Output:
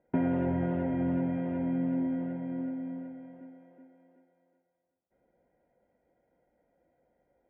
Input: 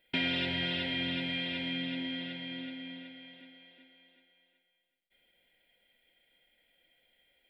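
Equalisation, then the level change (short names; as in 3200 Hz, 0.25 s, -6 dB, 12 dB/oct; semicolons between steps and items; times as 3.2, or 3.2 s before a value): HPF 52 Hz; LPF 1100 Hz 24 dB/oct; air absorption 230 m; +8.5 dB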